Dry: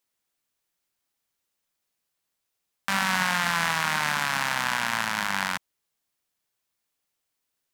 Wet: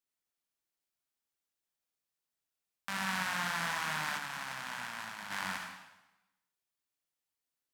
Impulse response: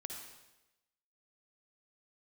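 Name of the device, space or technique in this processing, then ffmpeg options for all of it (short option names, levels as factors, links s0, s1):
bathroom: -filter_complex "[1:a]atrim=start_sample=2205[s0];[0:a][s0]afir=irnorm=-1:irlink=0,asplit=3[s1][s2][s3];[s1]afade=t=out:st=4.17:d=0.02[s4];[s2]agate=range=0.0224:threshold=0.0708:ratio=3:detection=peak,afade=t=in:st=4.17:d=0.02,afade=t=out:st=5.3:d=0.02[s5];[s3]afade=t=in:st=5.3:d=0.02[s6];[s4][s5][s6]amix=inputs=3:normalize=0,volume=0.422"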